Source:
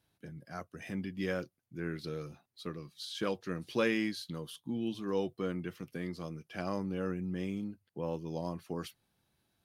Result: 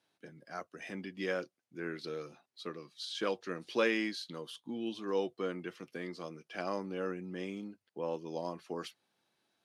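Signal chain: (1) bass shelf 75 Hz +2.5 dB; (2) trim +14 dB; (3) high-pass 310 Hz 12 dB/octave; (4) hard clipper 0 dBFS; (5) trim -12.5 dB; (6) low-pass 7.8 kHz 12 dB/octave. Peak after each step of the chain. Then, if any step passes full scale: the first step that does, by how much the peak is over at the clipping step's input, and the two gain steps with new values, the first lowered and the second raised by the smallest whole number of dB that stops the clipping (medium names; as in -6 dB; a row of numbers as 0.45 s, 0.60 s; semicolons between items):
-17.0 dBFS, -3.0 dBFS, -3.5 dBFS, -3.5 dBFS, -16.0 dBFS, -16.0 dBFS; nothing clips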